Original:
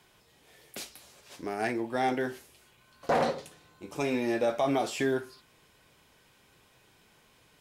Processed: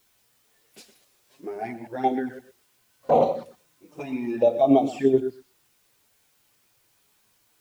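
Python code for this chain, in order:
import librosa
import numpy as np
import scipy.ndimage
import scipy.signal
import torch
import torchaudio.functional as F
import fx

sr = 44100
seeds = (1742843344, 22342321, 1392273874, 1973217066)

p1 = fx.reverse_delay(x, sr, ms=104, wet_db=-9)
p2 = fx.level_steps(p1, sr, step_db=13)
p3 = p1 + F.gain(torch.from_numpy(p2), 2.0).numpy()
p4 = fx.env_flanger(p3, sr, rest_ms=9.9, full_db=-19.0)
p5 = p4 + fx.echo_single(p4, sr, ms=121, db=-11.0, dry=0)
p6 = fx.dmg_noise_colour(p5, sr, seeds[0], colour='white', level_db=-48.0)
p7 = fx.spectral_expand(p6, sr, expansion=1.5)
y = F.gain(torch.from_numpy(p7), 2.5).numpy()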